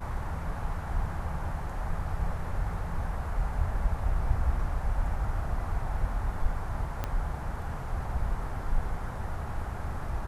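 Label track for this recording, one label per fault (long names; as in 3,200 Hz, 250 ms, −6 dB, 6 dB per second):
7.040000	7.040000	click −17 dBFS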